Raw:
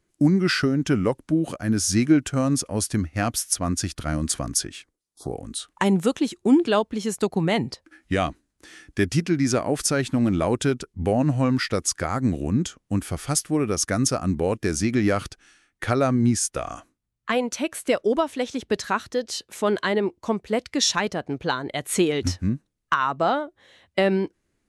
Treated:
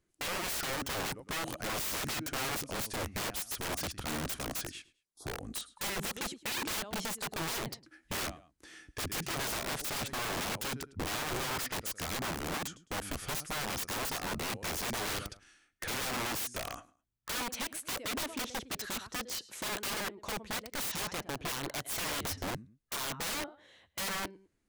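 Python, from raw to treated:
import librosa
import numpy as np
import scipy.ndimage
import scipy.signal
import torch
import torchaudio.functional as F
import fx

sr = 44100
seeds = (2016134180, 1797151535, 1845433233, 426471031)

y = fx.echo_feedback(x, sr, ms=106, feedback_pct=25, wet_db=-21)
y = (np.mod(10.0 ** (24.0 / 20.0) * y + 1.0, 2.0) - 1.0) / 10.0 ** (24.0 / 20.0)
y = y * 10.0 ** (-6.5 / 20.0)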